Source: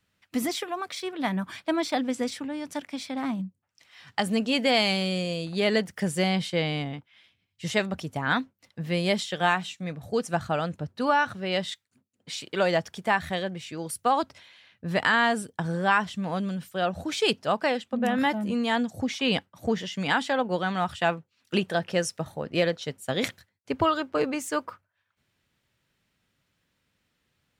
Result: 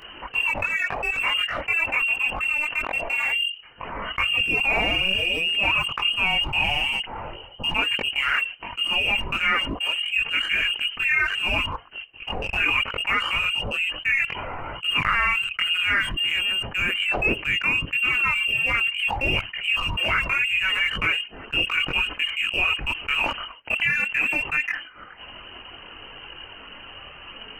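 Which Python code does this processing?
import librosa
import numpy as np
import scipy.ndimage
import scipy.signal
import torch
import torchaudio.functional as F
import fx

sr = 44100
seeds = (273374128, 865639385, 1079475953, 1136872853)

p1 = fx.freq_invert(x, sr, carrier_hz=3000)
p2 = np.sign(p1) * np.maximum(np.abs(p1) - 10.0 ** (-38.5 / 20.0), 0.0)
p3 = p1 + (p2 * librosa.db_to_amplitude(-6.0))
p4 = fx.chorus_voices(p3, sr, voices=4, hz=0.66, base_ms=21, depth_ms=2.3, mix_pct=60)
p5 = fx.env_flatten(p4, sr, amount_pct=70)
y = p5 * librosa.db_to_amplitude(-3.5)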